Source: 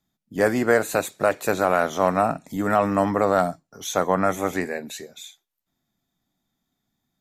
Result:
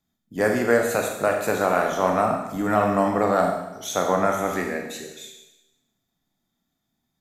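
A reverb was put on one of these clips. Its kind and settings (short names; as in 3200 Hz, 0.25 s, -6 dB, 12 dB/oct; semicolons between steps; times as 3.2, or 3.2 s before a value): Schroeder reverb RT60 0.97 s, combs from 26 ms, DRR 2 dB; gain -2 dB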